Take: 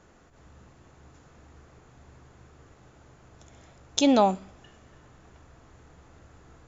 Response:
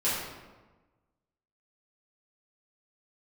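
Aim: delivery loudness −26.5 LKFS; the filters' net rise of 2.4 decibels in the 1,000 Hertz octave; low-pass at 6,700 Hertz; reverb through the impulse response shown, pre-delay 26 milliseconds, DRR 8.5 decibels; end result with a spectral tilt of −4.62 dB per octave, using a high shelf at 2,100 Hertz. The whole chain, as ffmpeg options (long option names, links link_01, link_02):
-filter_complex "[0:a]lowpass=6700,equalizer=frequency=1000:width_type=o:gain=4,highshelf=frequency=2100:gain=-4,asplit=2[link_01][link_02];[1:a]atrim=start_sample=2205,adelay=26[link_03];[link_02][link_03]afir=irnorm=-1:irlink=0,volume=-19dB[link_04];[link_01][link_04]amix=inputs=2:normalize=0,volume=-3.5dB"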